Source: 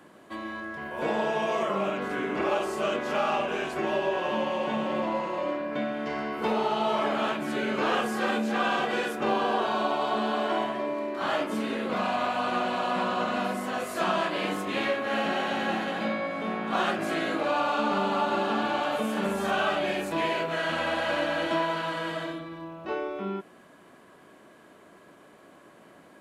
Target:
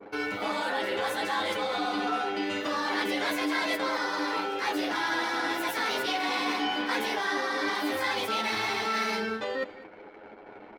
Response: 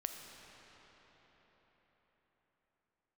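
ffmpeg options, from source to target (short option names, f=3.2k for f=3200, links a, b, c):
-filter_complex "[0:a]anlmdn=0.00398,lowshelf=f=230:g=3,areverse,acompressor=threshold=-38dB:ratio=5,areverse,atempo=1.8,asplit=2[a][b];[b]adelay=13,volume=-3dB[c];[a][c]amix=inputs=2:normalize=0,asplit=2[d][e];[e]aecho=0:1:269:0.141[f];[d][f]amix=inputs=2:normalize=0,asetrate=59535,aresample=44100,adynamicequalizer=threshold=0.00282:dfrequency=1500:dqfactor=0.7:tfrequency=1500:tqfactor=0.7:attack=5:release=100:ratio=0.375:range=2.5:mode=boostabove:tftype=highshelf,volume=7.5dB"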